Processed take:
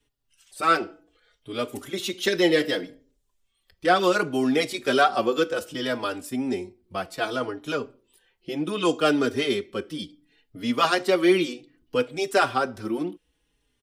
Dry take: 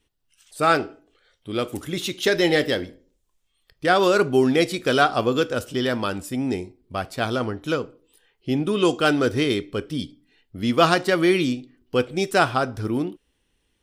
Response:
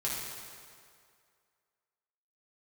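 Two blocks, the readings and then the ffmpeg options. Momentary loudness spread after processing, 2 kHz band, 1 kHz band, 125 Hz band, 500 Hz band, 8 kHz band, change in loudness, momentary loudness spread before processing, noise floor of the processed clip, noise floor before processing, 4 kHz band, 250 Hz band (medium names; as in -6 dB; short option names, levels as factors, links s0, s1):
13 LU, -2.5 dB, -1.5 dB, -9.5 dB, -2.5 dB, -2.0 dB, -2.5 dB, 12 LU, -73 dBFS, -71 dBFS, -2.0 dB, -3.0 dB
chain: -filter_complex "[0:a]acrossover=split=190|570|2000[s0][s1][s2][s3];[s0]acompressor=threshold=0.00501:ratio=6[s4];[s4][s1][s2][s3]amix=inputs=4:normalize=0,asplit=2[s5][s6];[s6]adelay=4.4,afreqshift=-0.66[s7];[s5][s7]amix=inputs=2:normalize=1,volume=1.12"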